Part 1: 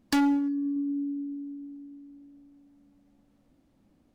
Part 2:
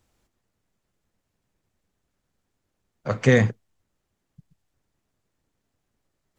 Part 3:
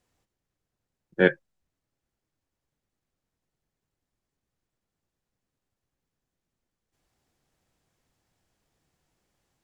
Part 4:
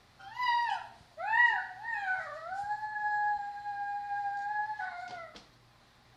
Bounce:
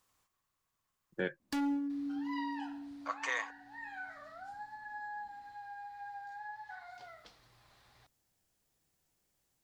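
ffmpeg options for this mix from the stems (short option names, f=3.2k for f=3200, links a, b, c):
-filter_complex "[0:a]adelay=1400,volume=-8.5dB[a];[1:a]highpass=f=800:w=0.5412,highpass=f=800:w=1.3066,equalizer=f=1.1k:t=o:w=0.23:g=12.5,volume=-5.5dB[b];[2:a]aemphasis=mode=production:type=50kf,volume=-7.5dB[c];[3:a]equalizer=f=220:w=1.1:g=-7,acompressor=threshold=-55dB:ratio=1.5,adelay=1900,volume=-2.5dB[d];[a][b][c][d]amix=inputs=4:normalize=0,alimiter=limit=-23dB:level=0:latency=1:release=462"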